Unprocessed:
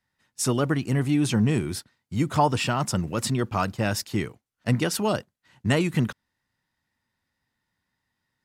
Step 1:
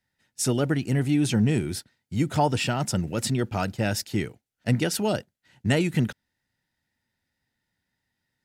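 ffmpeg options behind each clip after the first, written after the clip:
ffmpeg -i in.wav -af "equalizer=frequency=1100:width=4.7:gain=-13" out.wav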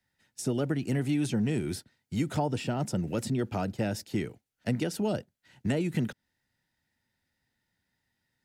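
ffmpeg -i in.wav -filter_complex "[0:a]acrossover=split=150|690[link_01][link_02][link_03];[link_01]acompressor=threshold=-39dB:ratio=4[link_04];[link_02]acompressor=threshold=-27dB:ratio=4[link_05];[link_03]acompressor=threshold=-40dB:ratio=4[link_06];[link_04][link_05][link_06]amix=inputs=3:normalize=0" out.wav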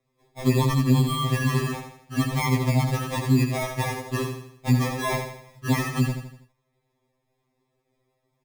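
ffmpeg -i in.wav -af "acrusher=samples=30:mix=1:aa=0.000001,aecho=1:1:81|162|243|324|405:0.447|0.205|0.0945|0.0435|0.02,afftfilt=real='re*2.45*eq(mod(b,6),0)':imag='im*2.45*eq(mod(b,6),0)':win_size=2048:overlap=0.75,volume=7dB" out.wav

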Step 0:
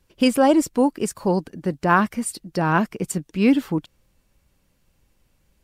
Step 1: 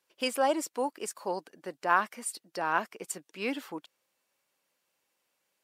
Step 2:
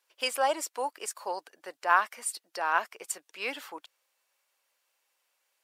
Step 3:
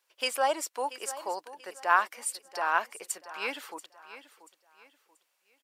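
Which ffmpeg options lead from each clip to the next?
ffmpeg -i in.wav -af "highpass=550,volume=-6.5dB" out.wav
ffmpeg -i in.wav -af "highpass=630,volume=2.5dB" out.wav
ffmpeg -i in.wav -af "aecho=1:1:684|1368|2052:0.178|0.0551|0.0171" out.wav

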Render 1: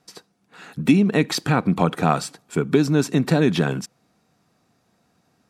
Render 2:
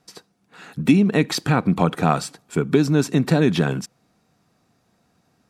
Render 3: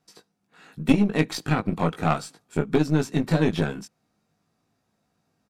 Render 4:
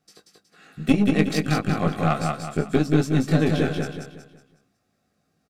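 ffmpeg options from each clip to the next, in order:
ffmpeg -i in.wav -af "lowshelf=frequency=89:gain=5" out.wav
ffmpeg -i in.wav -filter_complex "[0:a]asplit=2[link_01][link_02];[link_02]adelay=19,volume=-4dB[link_03];[link_01][link_03]amix=inputs=2:normalize=0,aeval=exprs='0.891*(cos(1*acos(clip(val(0)/0.891,-1,1)))-cos(1*PI/2))+0.0708*(cos(3*acos(clip(val(0)/0.891,-1,1)))-cos(3*PI/2))+0.0891*(cos(4*acos(clip(val(0)/0.891,-1,1)))-cos(4*PI/2))+0.0355*(cos(7*acos(clip(val(0)/0.891,-1,1)))-cos(7*PI/2))':channel_layout=same,volume=-3.5dB" out.wav
ffmpeg -i in.wav -filter_complex "[0:a]asuperstop=centerf=940:order=8:qfactor=5.5,asplit=2[link_01][link_02];[link_02]aecho=0:1:184|368|552|736|920:0.668|0.254|0.0965|0.0367|0.0139[link_03];[link_01][link_03]amix=inputs=2:normalize=0" out.wav

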